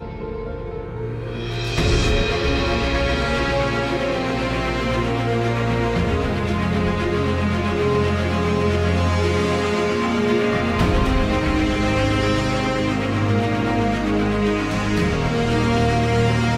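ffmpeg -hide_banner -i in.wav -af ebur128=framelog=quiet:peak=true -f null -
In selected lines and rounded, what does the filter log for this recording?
Integrated loudness:
  I:         -20.4 LUFS
  Threshold: -30.4 LUFS
Loudness range:
  LRA:         1.7 LU
  Threshold: -40.3 LUFS
  LRA low:   -21.2 LUFS
  LRA high:  -19.5 LUFS
True peak:
  Peak:       -6.3 dBFS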